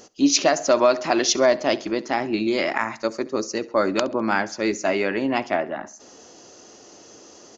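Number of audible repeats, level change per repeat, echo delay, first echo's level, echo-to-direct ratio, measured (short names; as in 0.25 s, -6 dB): 3, -6.5 dB, 67 ms, -21.0 dB, -20.0 dB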